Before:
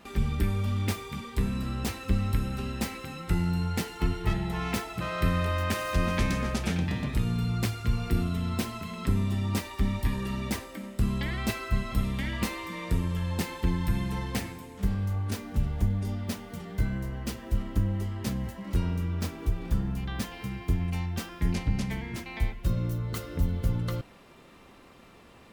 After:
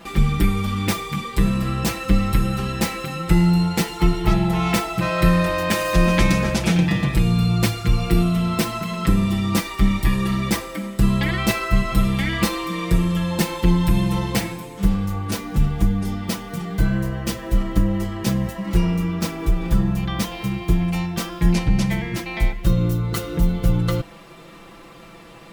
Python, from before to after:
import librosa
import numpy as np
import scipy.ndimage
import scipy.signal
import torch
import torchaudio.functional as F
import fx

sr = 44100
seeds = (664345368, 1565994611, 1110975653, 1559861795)

y = x + 0.84 * np.pad(x, (int(6.0 * sr / 1000.0), 0))[:len(x)]
y = y * librosa.db_to_amplitude(8.0)